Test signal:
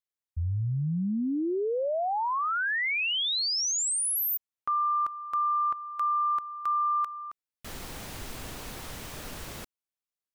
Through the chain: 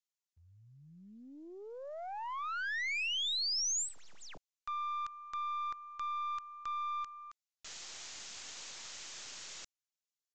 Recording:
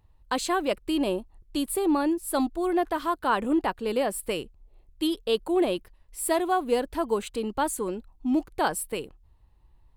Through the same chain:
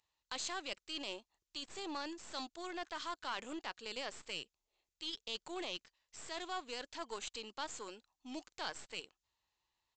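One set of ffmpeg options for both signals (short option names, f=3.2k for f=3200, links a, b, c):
-af "aderivative,areverse,acompressor=threshold=-42dB:ratio=6:attack=0.6:release=28:knee=6:detection=rms,areverse,acrusher=bits=9:mode=log:mix=0:aa=0.000001,aeval=exprs='0.0251*(cos(1*acos(clip(val(0)/0.0251,-1,1)))-cos(1*PI/2))+0.001*(cos(6*acos(clip(val(0)/0.0251,-1,1)))-cos(6*PI/2))+0.00158*(cos(7*acos(clip(val(0)/0.0251,-1,1)))-cos(7*PI/2))':c=same,aresample=16000,aresample=44100,volume=9.5dB"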